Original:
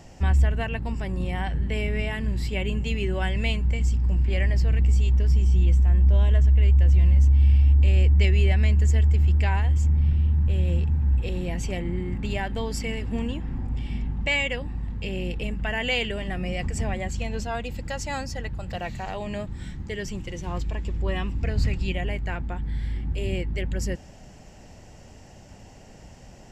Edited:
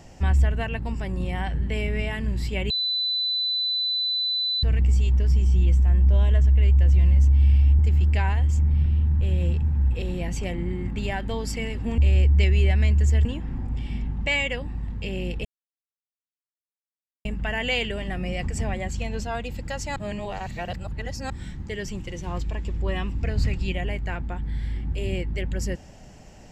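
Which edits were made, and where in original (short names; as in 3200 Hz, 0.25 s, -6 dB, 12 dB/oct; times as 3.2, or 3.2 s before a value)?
2.7–4.63 bleep 4000 Hz -22 dBFS
7.79–9.06 move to 13.25
15.45 insert silence 1.80 s
18.16–19.5 reverse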